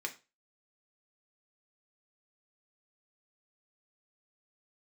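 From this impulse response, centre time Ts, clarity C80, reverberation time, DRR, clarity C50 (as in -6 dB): 8 ms, 20.5 dB, 0.30 s, 2.5 dB, 15.0 dB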